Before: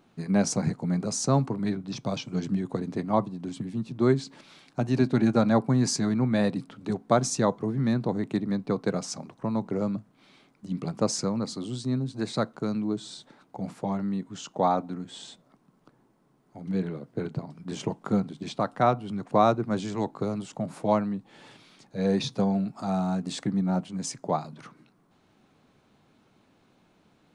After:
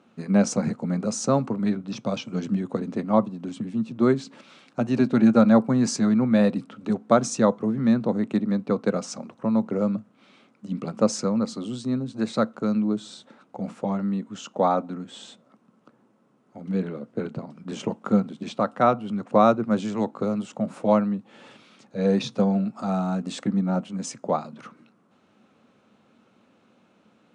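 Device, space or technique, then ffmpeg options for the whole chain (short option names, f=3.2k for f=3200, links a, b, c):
car door speaker: -af "highpass=110,equalizer=f=150:t=q:w=4:g=-4,equalizer=f=220:t=q:w=4:g=8,equalizer=f=530:t=q:w=4:g=7,equalizer=f=1.3k:t=q:w=4:g=6,equalizer=f=2.7k:t=q:w=4:g=4,equalizer=f=4.6k:t=q:w=4:g=-3,lowpass=f=9.2k:w=0.5412,lowpass=f=9.2k:w=1.3066"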